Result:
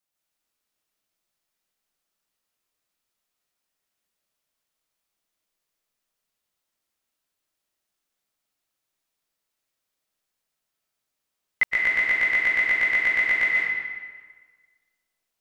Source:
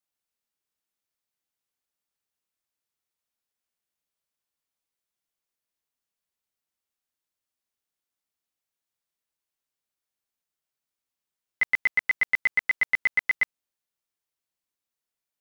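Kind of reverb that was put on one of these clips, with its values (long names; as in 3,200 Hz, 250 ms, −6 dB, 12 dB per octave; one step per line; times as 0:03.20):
comb and all-pass reverb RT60 1.5 s, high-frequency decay 0.8×, pre-delay 100 ms, DRR −3.5 dB
level +2.5 dB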